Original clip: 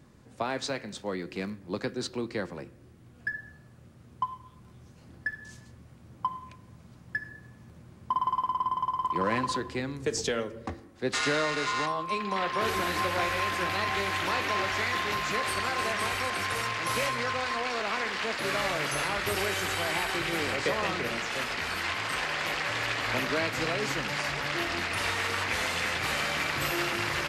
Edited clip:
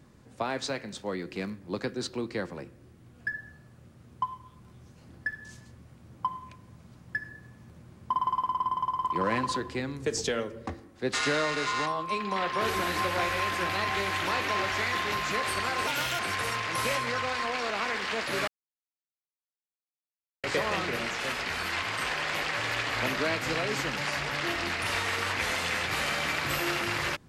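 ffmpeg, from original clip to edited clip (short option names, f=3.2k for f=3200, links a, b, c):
-filter_complex "[0:a]asplit=5[a][b][c][d][e];[a]atrim=end=15.874[f];[b]atrim=start=15.87:end=16.31,asetpts=PTS-STARTPTS,asetrate=59535,aresample=44100,atrim=end_sample=14373,asetpts=PTS-STARTPTS[g];[c]atrim=start=16.306:end=18.59,asetpts=PTS-STARTPTS,afade=t=out:st=2.28:d=0.004:c=hsin[h];[d]atrim=start=18.59:end=20.55,asetpts=PTS-STARTPTS,volume=0[i];[e]atrim=start=20.55,asetpts=PTS-STARTPTS,afade=t=in:d=0.004:c=hsin[j];[f][g]acrossfade=d=0.004:c1=hsin:c2=hsin[k];[h][i][j]concat=n=3:v=0:a=1[l];[k][l]acrossfade=d=0.004:c1=hsin:c2=hsin"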